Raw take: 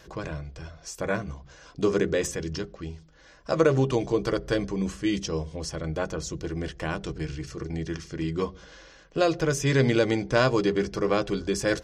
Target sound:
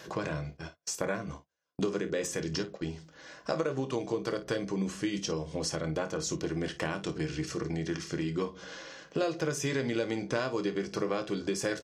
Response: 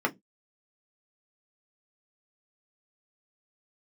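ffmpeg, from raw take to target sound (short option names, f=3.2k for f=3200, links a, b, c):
-filter_complex "[0:a]highpass=150,asplit=3[a][b][c];[a]afade=t=out:st=0.53:d=0.02[d];[b]agate=range=-41dB:threshold=-42dB:ratio=16:detection=peak,afade=t=in:st=0.53:d=0.02,afade=t=out:st=2.85:d=0.02[e];[c]afade=t=in:st=2.85:d=0.02[f];[d][e][f]amix=inputs=3:normalize=0,acompressor=threshold=-34dB:ratio=5,aecho=1:1:26|54:0.266|0.188,volume=4.5dB"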